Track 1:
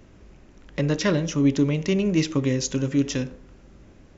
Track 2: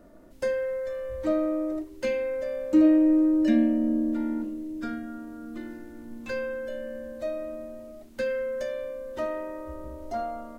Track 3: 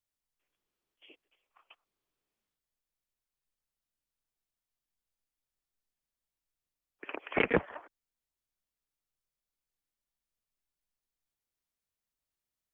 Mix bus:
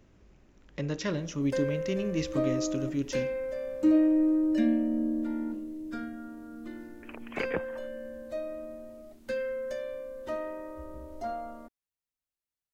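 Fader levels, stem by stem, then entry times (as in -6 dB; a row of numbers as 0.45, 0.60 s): -9.5, -4.0, -6.0 dB; 0.00, 1.10, 0.00 s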